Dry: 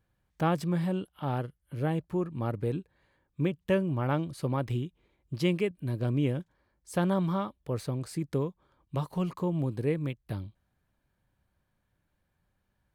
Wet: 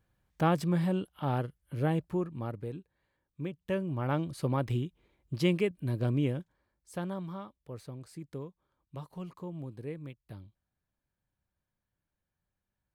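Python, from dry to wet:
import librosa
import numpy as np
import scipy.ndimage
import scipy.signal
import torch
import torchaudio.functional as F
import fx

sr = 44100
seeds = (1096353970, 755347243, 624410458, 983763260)

y = fx.gain(x, sr, db=fx.line((2.04, 0.5), (2.74, -9.0), (3.41, -9.0), (4.32, 0.0), (6.06, 0.0), (7.26, -11.0)))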